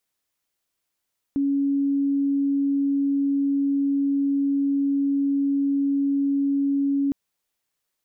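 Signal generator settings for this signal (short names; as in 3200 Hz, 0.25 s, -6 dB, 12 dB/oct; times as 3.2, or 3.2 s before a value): tone sine 279 Hz -19 dBFS 5.76 s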